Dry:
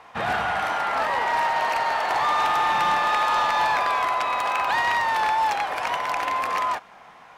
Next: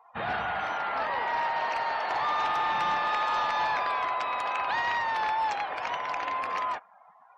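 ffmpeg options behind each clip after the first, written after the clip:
ffmpeg -i in.wav -af "afftdn=noise_reduction=24:noise_floor=-44,volume=-6dB" out.wav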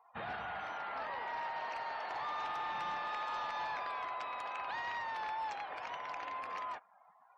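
ffmpeg -i in.wav -af "alimiter=level_in=1.5dB:limit=-24dB:level=0:latency=1:release=244,volume=-1.5dB,volume=-8dB" out.wav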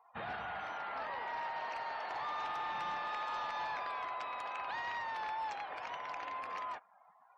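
ffmpeg -i in.wav -af anull out.wav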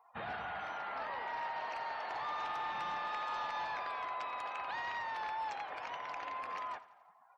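ffmpeg -i in.wav -af "aecho=1:1:86|172|258|344|430:0.141|0.0791|0.0443|0.0248|0.0139" out.wav

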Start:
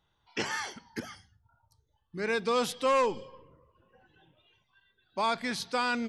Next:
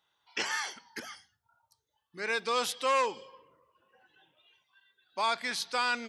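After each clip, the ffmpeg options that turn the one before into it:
ffmpeg -i in.wav -af "highpass=frequency=1000:poles=1,volume=2.5dB" out.wav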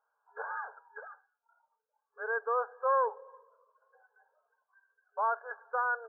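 ffmpeg -i in.wav -af "afftfilt=real='re*between(b*sr/4096,410,1700)':imag='im*between(b*sr/4096,410,1700)':win_size=4096:overlap=0.75" out.wav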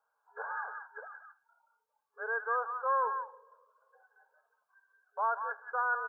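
ffmpeg -i in.wav -filter_complex "[0:a]acrossover=split=730|760[link_01][link_02][link_03];[link_01]alimiter=level_in=13dB:limit=-24dB:level=0:latency=1:release=89,volume=-13dB[link_04];[link_03]aecho=1:1:179:0.668[link_05];[link_04][link_02][link_05]amix=inputs=3:normalize=0" out.wav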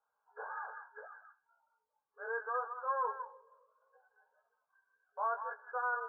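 ffmpeg -i in.wav -af "lowpass=frequency=1300:poles=1,flanger=delay=16:depth=4.2:speed=0.69,volume=1dB" out.wav

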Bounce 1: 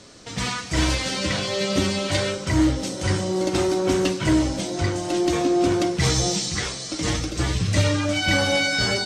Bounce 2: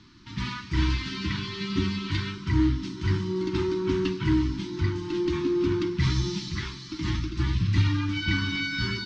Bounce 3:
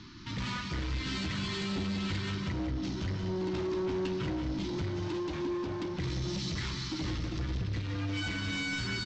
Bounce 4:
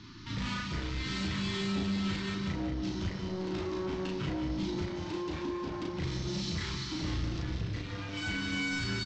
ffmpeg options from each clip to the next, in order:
ffmpeg -i in.wav -af "lowpass=frequency=4700:width=0.5412,lowpass=frequency=4700:width=1.3066,lowshelf=frequency=240:gain=7,afftfilt=real='re*(1-between(b*sr/4096,390,860))':imag='im*(1-between(b*sr/4096,390,860))':win_size=4096:overlap=0.75,volume=-7dB" out.wav
ffmpeg -i in.wav -af "acompressor=threshold=-31dB:ratio=6,aresample=16000,asoftclip=type=tanh:threshold=-35.5dB,aresample=44100,aecho=1:1:183:0.398,volume=4.5dB" out.wav
ffmpeg -i in.wav -filter_complex "[0:a]asplit=2[link_01][link_02];[link_02]adelay=36,volume=-2dB[link_03];[link_01][link_03]amix=inputs=2:normalize=0,volume=-2dB" out.wav

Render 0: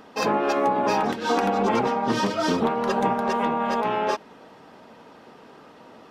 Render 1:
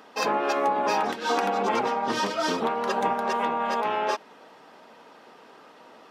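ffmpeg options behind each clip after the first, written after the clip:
ffmpeg -i in.wav -af "highpass=frequency=510:poles=1" out.wav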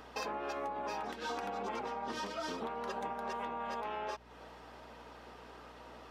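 ffmpeg -i in.wav -af "acompressor=threshold=-36dB:ratio=4,aeval=exprs='val(0)+0.00126*(sin(2*PI*60*n/s)+sin(2*PI*2*60*n/s)/2+sin(2*PI*3*60*n/s)/3+sin(2*PI*4*60*n/s)/4+sin(2*PI*5*60*n/s)/5)':channel_layout=same,volume=-2.5dB" out.wav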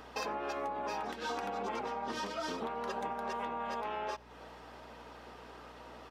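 ffmpeg -i in.wav -filter_complex "[0:a]asplit=2[link_01][link_02];[link_02]adelay=93.29,volume=-25dB,highshelf=frequency=4000:gain=-2.1[link_03];[link_01][link_03]amix=inputs=2:normalize=0,volume=1.5dB" out.wav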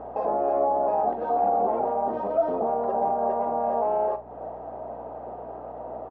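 ffmpeg -i in.wav -filter_complex "[0:a]alimiter=level_in=6.5dB:limit=-24dB:level=0:latency=1:release=19,volume=-6.5dB,lowpass=frequency=690:width_type=q:width=4.9,asplit=2[link_01][link_02];[link_02]adelay=43,volume=-11.5dB[link_03];[link_01][link_03]amix=inputs=2:normalize=0,volume=8dB" out.wav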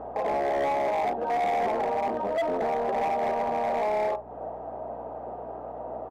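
ffmpeg -i in.wav -af "asoftclip=type=hard:threshold=-23dB" out.wav

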